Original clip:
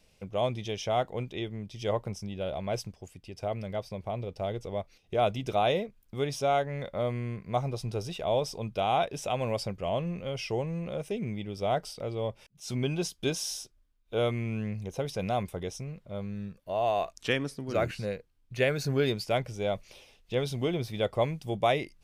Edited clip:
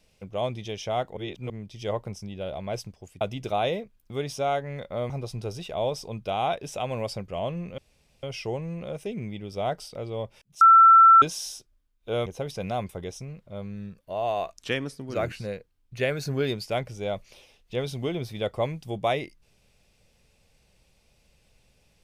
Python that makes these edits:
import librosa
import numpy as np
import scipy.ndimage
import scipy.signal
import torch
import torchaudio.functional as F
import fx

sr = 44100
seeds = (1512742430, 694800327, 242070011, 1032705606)

y = fx.edit(x, sr, fx.reverse_span(start_s=1.17, length_s=0.33),
    fx.cut(start_s=3.21, length_s=2.03),
    fx.cut(start_s=7.13, length_s=0.47),
    fx.insert_room_tone(at_s=10.28, length_s=0.45),
    fx.bleep(start_s=12.66, length_s=0.61, hz=1340.0, db=-10.0),
    fx.cut(start_s=14.31, length_s=0.54), tone=tone)